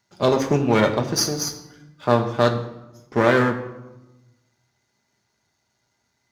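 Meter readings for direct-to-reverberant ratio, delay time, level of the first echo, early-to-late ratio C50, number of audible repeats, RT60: 3.0 dB, no echo audible, no echo audible, 10.5 dB, no echo audible, 1.0 s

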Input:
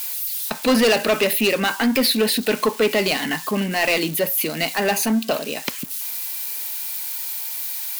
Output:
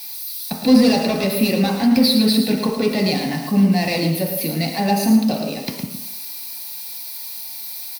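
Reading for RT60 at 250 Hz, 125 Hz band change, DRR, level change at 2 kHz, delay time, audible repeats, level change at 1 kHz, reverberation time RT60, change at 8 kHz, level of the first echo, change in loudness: 0.75 s, +9.5 dB, 0.0 dB, −6.0 dB, 111 ms, 1, +0.5 dB, 1.0 s, −4.0 dB, −8.0 dB, +1.5 dB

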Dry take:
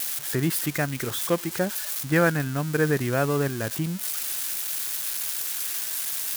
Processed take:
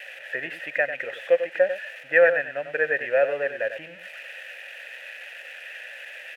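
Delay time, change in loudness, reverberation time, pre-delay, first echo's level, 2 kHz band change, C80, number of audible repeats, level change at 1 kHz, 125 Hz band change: 96 ms, +1.5 dB, no reverb audible, no reverb audible, −10.0 dB, +5.5 dB, no reverb audible, 1, −3.5 dB, below −25 dB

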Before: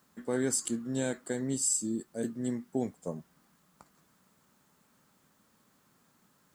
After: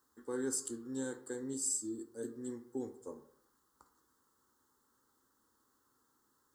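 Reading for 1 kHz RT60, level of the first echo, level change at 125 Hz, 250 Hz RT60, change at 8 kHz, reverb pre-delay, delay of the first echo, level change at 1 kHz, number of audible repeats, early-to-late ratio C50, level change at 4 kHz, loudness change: 0.65 s, no echo audible, −14.5 dB, 0.65 s, −6.0 dB, 6 ms, no echo audible, −8.5 dB, no echo audible, 13.0 dB, −9.0 dB, −6.5 dB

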